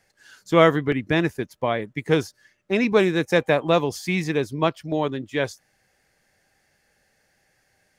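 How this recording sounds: noise floor -67 dBFS; spectral tilt -4.5 dB/oct

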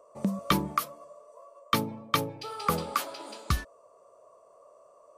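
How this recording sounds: noise floor -59 dBFS; spectral tilt -4.5 dB/oct

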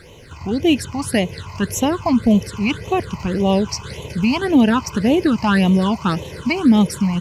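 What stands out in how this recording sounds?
phasing stages 8, 1.8 Hz, lowest notch 460–1500 Hz; a quantiser's noise floor 12-bit, dither none

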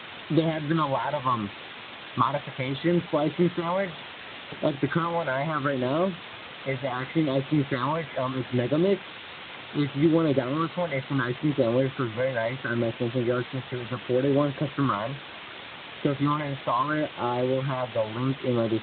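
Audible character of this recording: phasing stages 6, 0.71 Hz, lowest notch 320–1700 Hz; a quantiser's noise floor 6-bit, dither triangular; Speex

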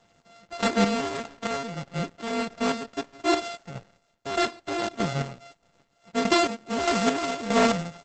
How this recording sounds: a buzz of ramps at a fixed pitch in blocks of 64 samples; chopped level 1.6 Hz, depth 60%, duty 35%; Opus

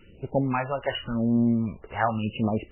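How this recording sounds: a quantiser's noise floor 10-bit, dither none; phasing stages 2, 0.91 Hz, lowest notch 200–1500 Hz; MP3

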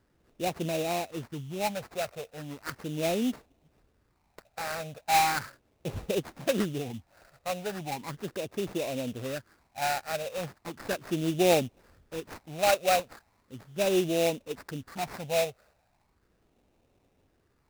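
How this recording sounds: phasing stages 12, 0.37 Hz, lowest notch 300–1700 Hz; aliases and images of a low sample rate 3200 Hz, jitter 20%

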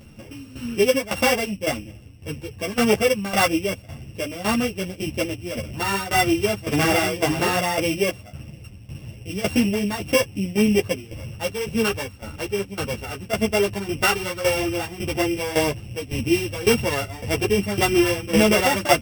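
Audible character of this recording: a buzz of ramps at a fixed pitch in blocks of 16 samples; tremolo saw down 1.8 Hz, depth 80%; a shimmering, thickened sound

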